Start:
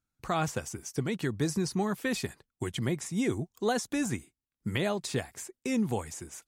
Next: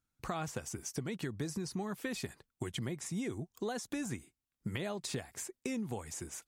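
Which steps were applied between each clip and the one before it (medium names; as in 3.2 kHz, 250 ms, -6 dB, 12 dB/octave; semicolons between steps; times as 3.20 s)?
compression, threshold -35 dBFS, peak gain reduction 11 dB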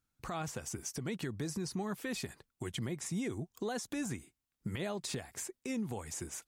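peak limiter -30 dBFS, peak gain reduction 6.5 dB; trim +1.5 dB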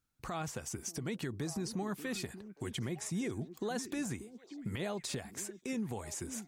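repeats whose band climbs or falls 584 ms, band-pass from 270 Hz, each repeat 1.4 oct, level -9 dB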